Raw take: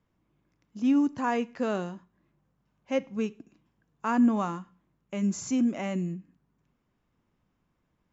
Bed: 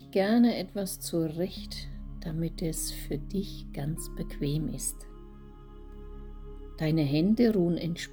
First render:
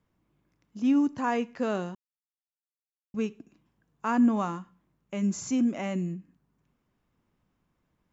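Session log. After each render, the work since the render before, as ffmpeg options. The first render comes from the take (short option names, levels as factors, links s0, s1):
-filter_complex "[0:a]asplit=3[s0][s1][s2];[s0]atrim=end=1.95,asetpts=PTS-STARTPTS,afade=t=out:st=1.946:d=0.004:c=hsin[s3];[s1]atrim=start=1.95:end=3.14,asetpts=PTS-STARTPTS,volume=0[s4];[s2]atrim=start=3.14,asetpts=PTS-STARTPTS,afade=t=in:d=0.004:c=hsin[s5];[s3][s4][s5]concat=n=3:v=0:a=1"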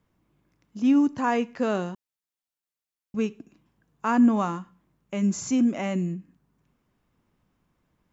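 -af "volume=1.5"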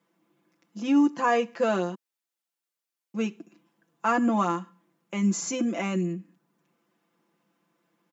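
-af "highpass=f=210:w=0.5412,highpass=f=210:w=1.3066,aecho=1:1:5.9:0.84"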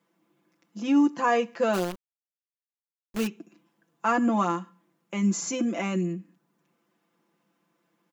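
-filter_complex "[0:a]asplit=3[s0][s1][s2];[s0]afade=t=out:st=1.73:d=0.02[s3];[s1]acrusher=bits=6:dc=4:mix=0:aa=0.000001,afade=t=in:st=1.73:d=0.02,afade=t=out:st=3.26:d=0.02[s4];[s2]afade=t=in:st=3.26:d=0.02[s5];[s3][s4][s5]amix=inputs=3:normalize=0"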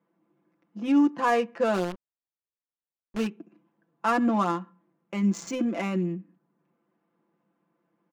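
-af "adynamicsmooth=sensitivity=5.5:basefreq=1800"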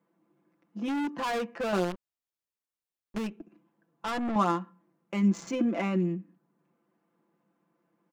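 -filter_complex "[0:a]asettb=1/sr,asplit=3[s0][s1][s2];[s0]atrim=end=0.884[s3];[s1]atrim=start=0.88:end=1.73,asetpts=PTS-STARTPTS,afade=t=in:d=0.004:c=qsin,afade=t=out:st=0.846:d=0.004:c=qsin,asoftclip=type=hard:threshold=0.0376[s4];[s2]atrim=start=1.726[s5];[s3][s4]acrossfade=d=0.004:c1=hsin:c2=qsin[s6];[s6][s5]acrossfade=d=0.004:c1=qsin:c2=hsin,asettb=1/sr,asplit=3[s7][s8][s9];[s7]atrim=end=3.184[s10];[s8]atrim=start=3.18:end=4.36,asetpts=PTS-STARTPTS,afade=t=in:d=0.004:c=qsin,afade=t=out:st=1.176:d=0.004:c=qsin,aeval=exprs='(tanh(28.2*val(0)+0.3)-tanh(0.3))/28.2':c=same[s11];[s9]atrim=start=4.356[s12];[s10][s11]acrossfade=d=0.004:c1=hsin:c2=qsin[s13];[s13][s12]acrossfade=d=0.004:c1=qsin:c2=hsin,asettb=1/sr,asplit=3[s14][s15][s16];[s14]atrim=end=5.284[s17];[s15]atrim=start=5.28:end=6,asetpts=PTS-STARTPTS,afade=t=in:d=0.004:c=qsin,afade=t=out:st=0.716:d=0.004:c=qsin,highshelf=f=5900:g=-10[s18];[s16]atrim=start=5.996[s19];[s17][s18]acrossfade=d=0.004:c1=hsin:c2=qsin[s20];[s20][s19]acrossfade=d=0.004:c1=qsin:c2=hsin"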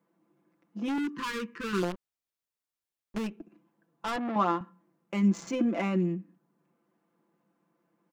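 -filter_complex "[0:a]asettb=1/sr,asplit=3[s0][s1][s2];[s0]atrim=end=0.984[s3];[s1]atrim=start=0.98:end=1.83,asetpts=PTS-STARTPTS,afade=t=in:d=0.004:c=qsin,afade=t=out:st=0.846:d=0.004:c=qsin,asuperstop=centerf=670:order=8:qfactor=1.2[s4];[s2]atrim=start=1.826[s5];[s3][s4]acrossfade=d=0.004:c1=hsin:c2=qsin[s6];[s6][s5]acrossfade=d=0.004:c1=qsin:c2=hsin,asettb=1/sr,asplit=3[s7][s8][s9];[s7]atrim=end=4.164[s10];[s8]atrim=start=4.16:end=4.61,asetpts=PTS-STARTPTS,afade=t=in:d=0.004:c=qsin,afade=t=out:st=0.446:d=0.004:c=qsin,highpass=210,lowpass=3900[s11];[s9]atrim=start=4.606[s12];[s10][s11]acrossfade=d=0.004:c1=hsin:c2=qsin[s13];[s13][s12]acrossfade=d=0.004:c1=qsin:c2=hsin"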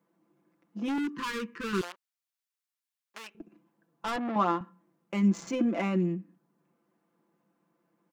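-filter_complex "[0:a]asettb=1/sr,asplit=3[s0][s1][s2];[s0]atrim=end=1.814[s3];[s1]atrim=start=1.81:end=3.35,asetpts=PTS-STARTPTS,afade=t=in:d=0.004:c=qsin,afade=t=out:st=1.536:d=0.004:c=qsin,highpass=1100[s4];[s2]atrim=start=3.346[s5];[s3][s4]acrossfade=d=0.004:c1=hsin:c2=qsin[s6];[s6][s5]acrossfade=d=0.004:c1=qsin:c2=hsin"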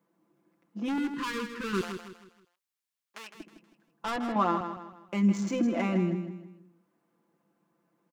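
-af "aecho=1:1:159|318|477|636:0.355|0.131|0.0486|0.018"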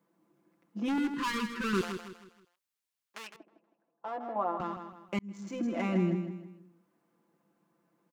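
-filter_complex "[0:a]asettb=1/sr,asplit=3[s0][s1][s2];[s0]atrim=end=1.244[s3];[s1]atrim=start=1.24:end=1.74,asetpts=PTS-STARTPTS,afade=t=in:d=0.004:c=qsin,afade=t=out:st=0.496:d=0.004:c=qsin,aecho=1:1:5.2:0.65,atrim=end_sample=22050[s4];[s2]atrim=start=1.736[s5];[s3][s4]acrossfade=d=0.004:c1=hsin:c2=qsin[s6];[s6][s5]acrossfade=d=0.004:c1=qsin:c2=hsin,asettb=1/sr,asplit=3[s7][s8][s9];[s7]atrim=end=3.364[s10];[s8]atrim=start=3.36:end=4.6,asetpts=PTS-STARTPTS,afade=t=in:d=0.004:c=qsin,afade=t=out:st=1.236:d=0.004:c=qsin,bandpass=f=650:t=q:w=2[s11];[s9]atrim=start=4.596[s12];[s10][s11]acrossfade=d=0.004:c1=hsin:c2=qsin[s13];[s13][s12]acrossfade=d=0.004:c1=qsin:c2=hsin,asplit=2[s14][s15];[s14]atrim=end=5.19,asetpts=PTS-STARTPTS,afade=t=out:st=5.186:d=0.004:c=hsin[s16];[s15]atrim=start=5.19,asetpts=PTS-STARTPTS,afade=t=in:d=0.91[s17];[s16][s17]concat=n=2:v=0:a=1"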